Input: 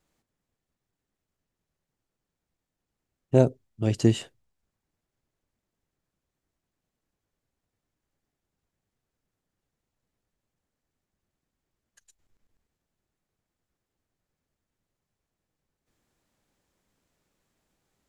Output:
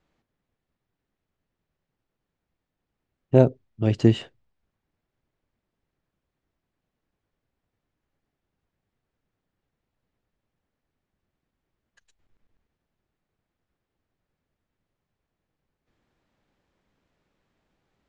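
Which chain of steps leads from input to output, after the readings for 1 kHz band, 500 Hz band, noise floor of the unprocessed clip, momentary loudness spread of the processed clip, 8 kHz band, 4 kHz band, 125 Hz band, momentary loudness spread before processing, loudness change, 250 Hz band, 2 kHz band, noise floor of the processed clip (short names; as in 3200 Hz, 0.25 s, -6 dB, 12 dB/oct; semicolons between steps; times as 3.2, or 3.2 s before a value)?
+3.0 dB, +3.0 dB, under -85 dBFS, 8 LU, n/a, +0.5 dB, +3.0 dB, 8 LU, +3.0 dB, +3.0 dB, +2.5 dB, -84 dBFS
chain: LPF 3600 Hz 12 dB/oct; gain +3 dB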